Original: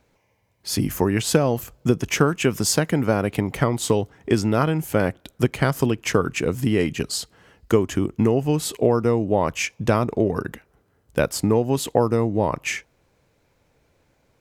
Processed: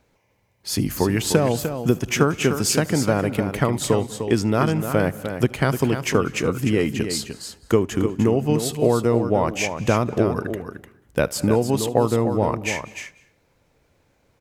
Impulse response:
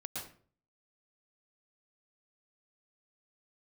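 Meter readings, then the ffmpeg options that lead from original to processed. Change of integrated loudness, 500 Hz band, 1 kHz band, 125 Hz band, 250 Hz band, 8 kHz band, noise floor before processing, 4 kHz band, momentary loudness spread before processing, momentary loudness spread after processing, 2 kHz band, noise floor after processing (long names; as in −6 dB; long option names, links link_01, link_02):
+0.5 dB, +0.5 dB, +0.5 dB, +0.5 dB, +0.5 dB, +0.5 dB, −65 dBFS, +0.5 dB, 7 LU, 8 LU, +0.5 dB, −64 dBFS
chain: -filter_complex "[0:a]aecho=1:1:301:0.376,asplit=2[link_01][link_02];[1:a]atrim=start_sample=2205,adelay=75[link_03];[link_02][link_03]afir=irnorm=-1:irlink=0,volume=-18.5dB[link_04];[link_01][link_04]amix=inputs=2:normalize=0"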